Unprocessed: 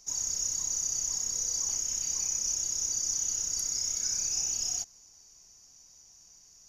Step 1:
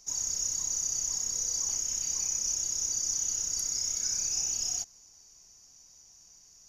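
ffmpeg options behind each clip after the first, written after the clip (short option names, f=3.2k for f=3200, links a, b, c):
-af anull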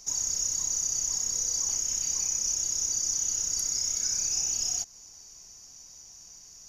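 -af "acompressor=threshold=-41dB:ratio=1.5,volume=7dB"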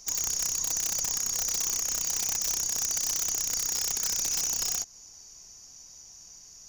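-af "aeval=exprs='(mod(11.2*val(0)+1,2)-1)/11.2':c=same"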